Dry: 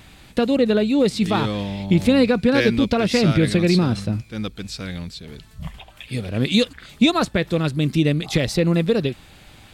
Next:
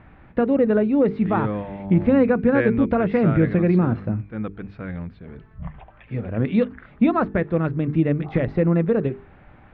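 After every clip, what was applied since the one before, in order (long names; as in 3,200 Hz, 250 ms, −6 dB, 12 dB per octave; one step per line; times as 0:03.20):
low-pass filter 1,800 Hz 24 dB per octave
mains-hum notches 50/100/150/200/250/300/350/400/450 Hz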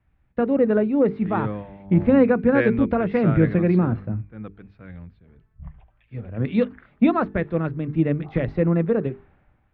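multiband upward and downward expander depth 70%
level −1 dB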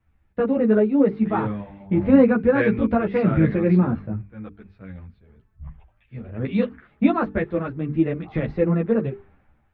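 string-ensemble chorus
level +3 dB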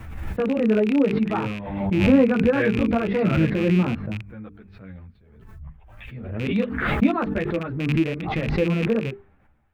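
loose part that buzzes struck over −27 dBFS, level −21 dBFS
background raised ahead of every attack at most 45 dB per second
level −2.5 dB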